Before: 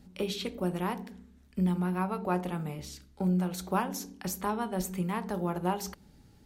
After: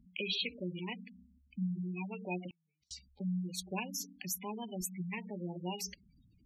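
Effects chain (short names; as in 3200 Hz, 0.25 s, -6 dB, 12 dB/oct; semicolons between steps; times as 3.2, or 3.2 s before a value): resonant high shelf 1800 Hz +9.5 dB, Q 3; spectral gate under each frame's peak -10 dB strong; 2.5–2.91 flipped gate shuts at -33 dBFS, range -39 dB; gain -7.5 dB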